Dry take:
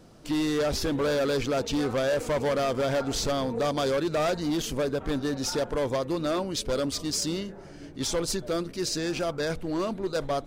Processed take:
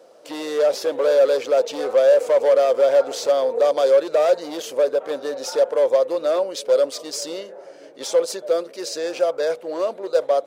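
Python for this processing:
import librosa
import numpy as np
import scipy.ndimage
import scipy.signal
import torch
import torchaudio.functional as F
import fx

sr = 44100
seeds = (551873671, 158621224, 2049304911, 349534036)

y = fx.highpass_res(x, sr, hz=530.0, q=4.9)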